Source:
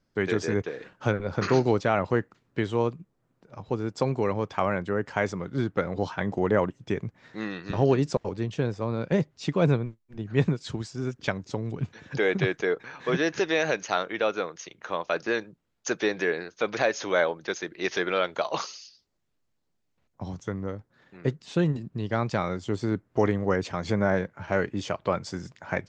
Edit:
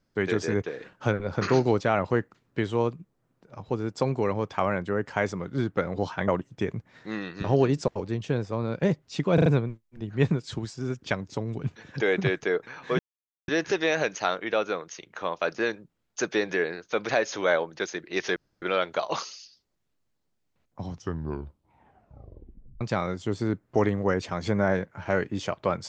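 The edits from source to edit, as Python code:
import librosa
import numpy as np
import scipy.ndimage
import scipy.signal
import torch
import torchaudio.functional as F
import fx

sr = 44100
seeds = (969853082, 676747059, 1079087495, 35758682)

y = fx.edit(x, sr, fx.cut(start_s=6.28, length_s=0.29),
    fx.stutter(start_s=9.63, slice_s=0.04, count=4),
    fx.insert_silence(at_s=13.16, length_s=0.49),
    fx.insert_room_tone(at_s=18.04, length_s=0.26),
    fx.tape_stop(start_s=20.27, length_s=1.96), tone=tone)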